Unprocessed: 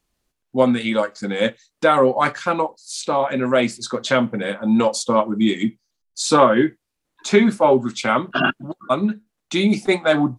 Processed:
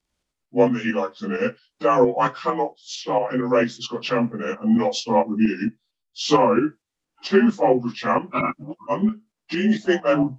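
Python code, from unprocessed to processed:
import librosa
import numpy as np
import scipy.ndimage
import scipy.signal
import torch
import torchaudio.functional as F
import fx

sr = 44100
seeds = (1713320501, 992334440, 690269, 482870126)

y = fx.partial_stretch(x, sr, pct=90)
y = fx.tremolo_shape(y, sr, shape='saw_up', hz=4.4, depth_pct=50)
y = F.gain(torch.from_numpy(y), 1.5).numpy()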